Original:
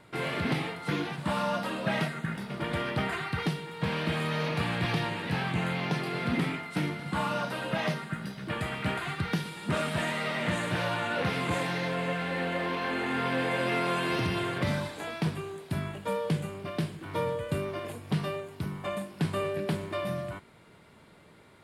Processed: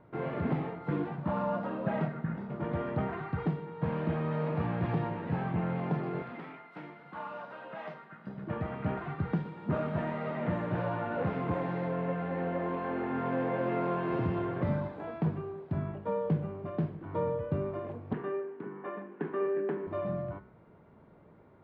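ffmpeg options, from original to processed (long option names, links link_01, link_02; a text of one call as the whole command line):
ffmpeg -i in.wav -filter_complex "[0:a]asettb=1/sr,asplit=3[link_01][link_02][link_03];[link_01]atrim=end=6.224[link_04];[link_02]atrim=start=6.22:end=8.27,asetpts=PTS-STARTPTS,afade=type=in:duration=0.004:curve=qsin,afade=type=out:start_time=2.046:duration=0.004:curve=qsin,highpass=frequency=1500:poles=1[link_05];[link_03]atrim=start=8.266[link_06];[link_04][link_05]acrossfade=duration=0.004:curve1=hsin:curve2=qsin[link_07];[link_07][link_06]acrossfade=duration=0.004:curve1=qsin:curve2=hsin,asettb=1/sr,asplit=3[link_08][link_09][link_10];[link_08]atrim=end=18.134[link_11];[link_09]atrim=start=18.13:end=19.87,asetpts=PTS-STARTPTS,afade=type=in:duration=0.004:curve=qsin,afade=type=out:start_time=1.736:duration=0.004:curve=qsin,highpass=frequency=240:width=0.5412,highpass=frequency=240:width=1.3066,equalizer=frequency=410:width_type=q:width=4:gain=7,equalizer=frequency=620:width_type=q:width=4:gain=-10,equalizer=frequency=1700:width_type=q:width=4:gain=8,lowpass=frequency=3100:width=0.5412,lowpass=frequency=3100:width=1.3066[link_12];[link_10]atrim=start=19.866[link_13];[link_11][link_12]acrossfade=duration=0.004:curve1=hsin:curve2=qsin[link_14];[link_14][link_13]acrossfade=duration=0.004:curve1=qsin:curve2=hsin,lowpass=1000,bandreject=frequency=64.16:width_type=h:width=4,bandreject=frequency=128.32:width_type=h:width=4,bandreject=frequency=192.48:width_type=h:width=4,bandreject=frequency=256.64:width_type=h:width=4,bandreject=frequency=320.8:width_type=h:width=4,bandreject=frequency=384.96:width_type=h:width=4,bandreject=frequency=449.12:width_type=h:width=4,bandreject=frequency=513.28:width_type=h:width=4,bandreject=frequency=577.44:width_type=h:width=4,bandreject=frequency=641.6:width_type=h:width=4,bandreject=frequency=705.76:width_type=h:width=4,bandreject=frequency=769.92:width_type=h:width=4,bandreject=frequency=834.08:width_type=h:width=4,bandreject=frequency=898.24:width_type=h:width=4,bandreject=frequency=962.4:width_type=h:width=4,bandreject=frequency=1026.56:width_type=h:width=4,bandreject=frequency=1090.72:width_type=h:width=4,bandreject=frequency=1154.88:width_type=h:width=4,bandreject=frequency=1219.04:width_type=h:width=4,bandreject=frequency=1283.2:width_type=h:width=4,bandreject=frequency=1347.36:width_type=h:width=4,bandreject=frequency=1411.52:width_type=h:width=4,bandreject=frequency=1475.68:width_type=h:width=4,bandreject=frequency=1539.84:width_type=h:width=4,bandreject=frequency=1604:width_type=h:width=4,bandreject=frequency=1668.16:width_type=h:width=4,bandreject=frequency=1732.32:width_type=h:width=4,bandreject=frequency=1796.48:width_type=h:width=4,bandreject=frequency=1860.64:width_type=h:width=4,bandreject=frequency=1924.8:width_type=h:width=4,bandreject=frequency=1988.96:width_type=h:width=4,bandreject=frequency=2053.12:width_type=h:width=4,bandreject=frequency=2117.28:width_type=h:width=4,bandreject=frequency=2181.44:width_type=h:width=4,bandreject=frequency=2245.6:width_type=h:width=4,bandreject=frequency=2309.76:width_type=h:width=4,bandreject=frequency=2373.92:width_type=h:width=4,bandreject=frequency=2438.08:width_type=h:width=4" out.wav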